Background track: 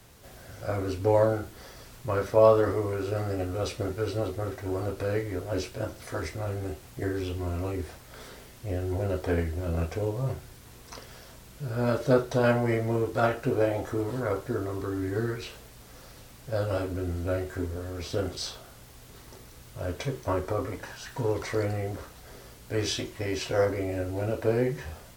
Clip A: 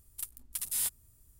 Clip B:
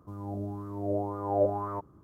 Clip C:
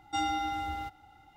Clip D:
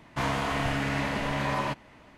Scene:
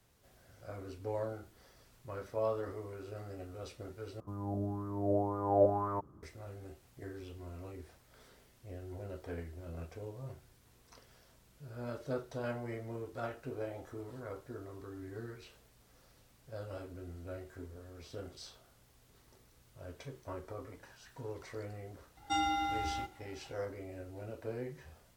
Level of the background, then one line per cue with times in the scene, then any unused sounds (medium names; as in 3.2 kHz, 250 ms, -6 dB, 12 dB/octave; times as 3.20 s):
background track -15.5 dB
4.20 s: replace with B -1 dB
22.17 s: add C -1.5 dB
not used: A, D